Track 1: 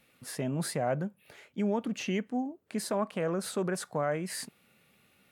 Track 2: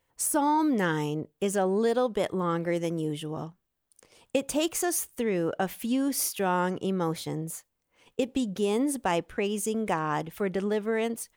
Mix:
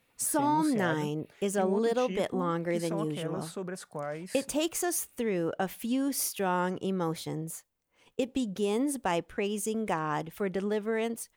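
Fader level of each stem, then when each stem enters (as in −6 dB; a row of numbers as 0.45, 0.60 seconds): −6.0, −2.5 decibels; 0.00, 0.00 seconds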